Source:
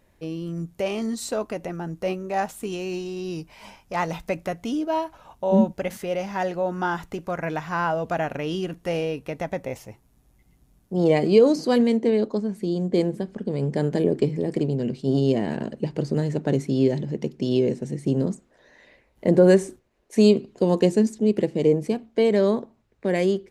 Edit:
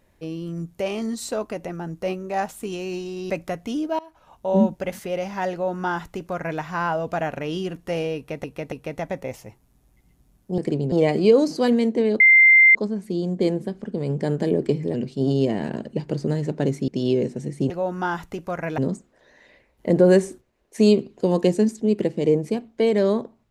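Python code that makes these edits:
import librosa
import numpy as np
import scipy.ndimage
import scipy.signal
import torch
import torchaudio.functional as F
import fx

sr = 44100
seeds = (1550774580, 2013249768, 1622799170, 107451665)

y = fx.edit(x, sr, fx.cut(start_s=3.3, length_s=0.98),
    fx.fade_in_from(start_s=4.97, length_s=0.5, floor_db=-23.5),
    fx.duplicate(start_s=6.5, length_s=1.08, to_s=18.16),
    fx.repeat(start_s=9.14, length_s=0.28, count=3),
    fx.insert_tone(at_s=12.28, length_s=0.55, hz=2090.0, db=-9.0),
    fx.move(start_s=14.47, length_s=0.34, to_s=11.0),
    fx.cut(start_s=16.75, length_s=0.59), tone=tone)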